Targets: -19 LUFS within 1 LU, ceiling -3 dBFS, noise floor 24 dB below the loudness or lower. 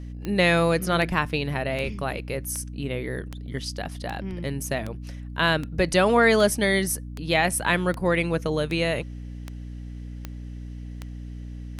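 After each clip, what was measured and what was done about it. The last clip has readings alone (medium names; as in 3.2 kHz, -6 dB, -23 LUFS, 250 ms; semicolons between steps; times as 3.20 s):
clicks found 16; hum 60 Hz; highest harmonic 300 Hz; hum level -33 dBFS; loudness -24.5 LUFS; peak level -5.5 dBFS; loudness target -19.0 LUFS
-> de-click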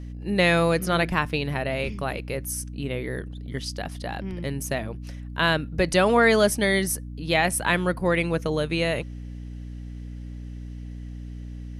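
clicks found 0; hum 60 Hz; highest harmonic 300 Hz; hum level -33 dBFS
-> hum notches 60/120/180/240/300 Hz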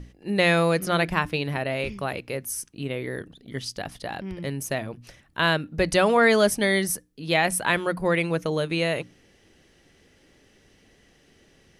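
hum not found; loudness -24.5 LUFS; peak level -6.0 dBFS; loudness target -19.0 LUFS
-> trim +5.5 dB; peak limiter -3 dBFS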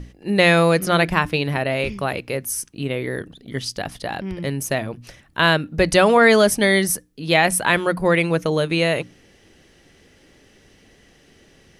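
loudness -19.0 LUFS; peak level -3.0 dBFS; noise floor -54 dBFS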